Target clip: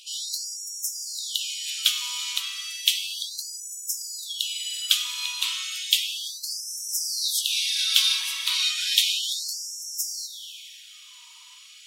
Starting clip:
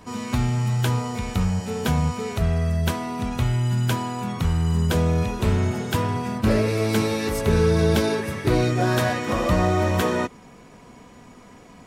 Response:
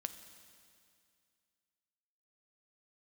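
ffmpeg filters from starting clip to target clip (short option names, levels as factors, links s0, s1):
-filter_complex "[0:a]highshelf=f=2300:t=q:w=3:g=12[s0];[1:a]atrim=start_sample=2205,asetrate=42336,aresample=44100[s1];[s0][s1]afir=irnorm=-1:irlink=0,afftfilt=real='re*gte(b*sr/1024,880*pow(5300/880,0.5+0.5*sin(2*PI*0.33*pts/sr)))':imag='im*gte(b*sr/1024,880*pow(5300/880,0.5+0.5*sin(2*PI*0.33*pts/sr)))':win_size=1024:overlap=0.75,volume=0.841"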